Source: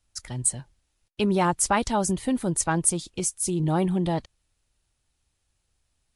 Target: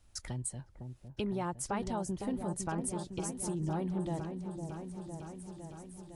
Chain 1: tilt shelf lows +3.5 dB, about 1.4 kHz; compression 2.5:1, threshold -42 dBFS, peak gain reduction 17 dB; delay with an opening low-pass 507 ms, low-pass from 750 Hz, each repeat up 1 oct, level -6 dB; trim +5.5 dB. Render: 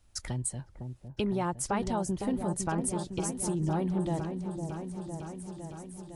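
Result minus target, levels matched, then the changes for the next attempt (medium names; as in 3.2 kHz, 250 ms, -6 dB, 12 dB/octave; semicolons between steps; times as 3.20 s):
compression: peak gain reduction -5 dB
change: compression 2.5:1, threshold -50 dBFS, peak gain reduction 22 dB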